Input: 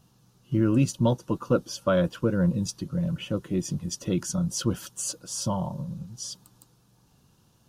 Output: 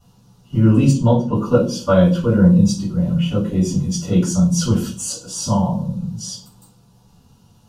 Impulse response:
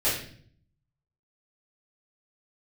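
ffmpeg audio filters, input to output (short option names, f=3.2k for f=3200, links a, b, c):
-filter_complex "[0:a]asettb=1/sr,asplit=3[a][b][c];[a]atrim=end=0.904[d];[b]atrim=start=0.9:end=1.35,asetpts=PTS-STARTPTS,afade=t=in:d=0.004:c=qsin,afade=t=out:st=0.446:d=0.004:c=qsin,lowpass=f=2.5k:p=1[e];[c]atrim=start=1.346[f];[d][e]acrossfade=d=0.004:c1=hsin:c2=qsin[g];[g][f]acrossfade=d=0.004:c1=qsin:c2=hsin[h];[1:a]atrim=start_sample=2205,asetrate=70560,aresample=44100[i];[h][i]afir=irnorm=-1:irlink=0,volume=-1dB"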